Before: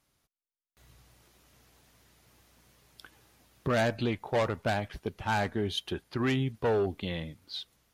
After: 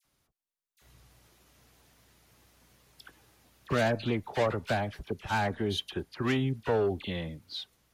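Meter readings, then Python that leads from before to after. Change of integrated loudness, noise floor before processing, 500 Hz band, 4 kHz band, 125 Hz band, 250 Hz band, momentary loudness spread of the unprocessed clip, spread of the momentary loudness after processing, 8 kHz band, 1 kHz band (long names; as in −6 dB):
0.0 dB, below −85 dBFS, 0.0 dB, 0.0 dB, 0.0 dB, 0.0 dB, 10 LU, 11 LU, 0.0 dB, 0.0 dB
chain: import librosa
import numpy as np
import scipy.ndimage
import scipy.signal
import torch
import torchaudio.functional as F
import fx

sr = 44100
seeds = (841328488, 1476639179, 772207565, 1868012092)

y = fx.dispersion(x, sr, late='lows', ms=50.0, hz=1500.0)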